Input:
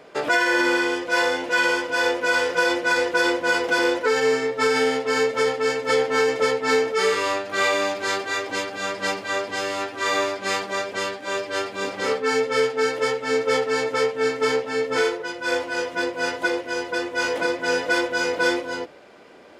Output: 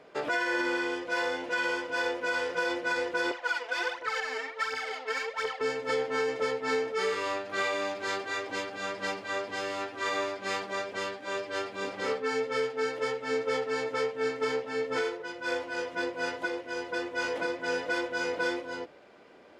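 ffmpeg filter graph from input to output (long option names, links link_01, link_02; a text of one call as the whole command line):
ffmpeg -i in.wav -filter_complex "[0:a]asettb=1/sr,asplit=3[link_01][link_02][link_03];[link_01]atrim=end=3.314[link_04];[link_02]atrim=start=3.31:end=5.61,asetpts=PTS-STARTPTS,afade=type=in:duration=0.004:curve=qsin,afade=type=out:start_time=2.296:duration=0.004:curve=qsin,highpass=800,aphaser=in_gain=1:out_gain=1:delay=4.7:decay=0.69:speed=1.4:type=triangular,adynamicsmooth=sensitivity=3:basefreq=6100[link_05];[link_03]atrim=start=5.606[link_06];[link_04][link_05]acrossfade=duration=0.004:curve1=hsin:curve2=qsin[link_07];[link_07][link_06]acrossfade=duration=0.004:curve1=qsin:curve2=hsin,highshelf=frequency=8100:gain=-10,alimiter=limit=-13dB:level=0:latency=1:release=467,volume=-7dB" out.wav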